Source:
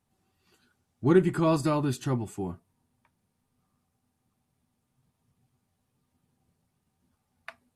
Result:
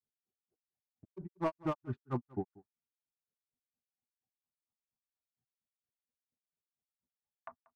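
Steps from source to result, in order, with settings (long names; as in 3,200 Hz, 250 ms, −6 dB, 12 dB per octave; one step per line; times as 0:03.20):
adaptive Wiener filter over 15 samples
auto-filter low-pass saw up 0.34 Hz 430–2,100 Hz
noise gate with hold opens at −48 dBFS
treble cut that deepens with the level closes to 2,700 Hz, closed at −21.5 dBFS
downward compressor 2.5 to 1, threshold −27 dBFS, peak gain reduction 9.5 dB
reverb reduction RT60 0.63 s
hard clipping −24 dBFS, distortion −15 dB
granular cloud 125 ms, grains 4.3 per second, spray 17 ms, pitch spread up and down by 0 semitones
on a send: single-tap delay 187 ms −22.5 dB
on the sum: level −1 dB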